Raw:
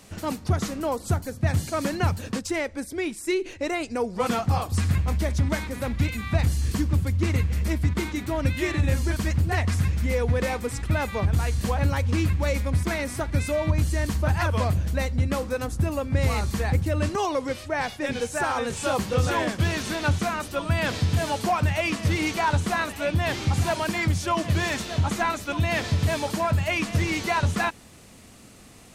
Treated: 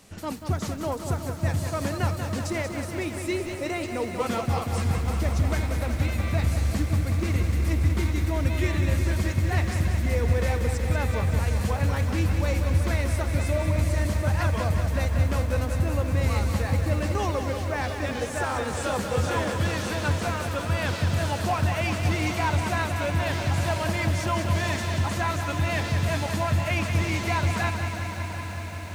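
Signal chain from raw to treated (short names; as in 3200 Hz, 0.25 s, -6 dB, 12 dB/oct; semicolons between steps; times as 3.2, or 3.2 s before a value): on a send: diffused feedback echo 0.867 s, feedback 69%, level -13 dB; on the sum: lo-fi delay 0.186 s, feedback 80%, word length 8-bit, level -7.5 dB; gain -3.5 dB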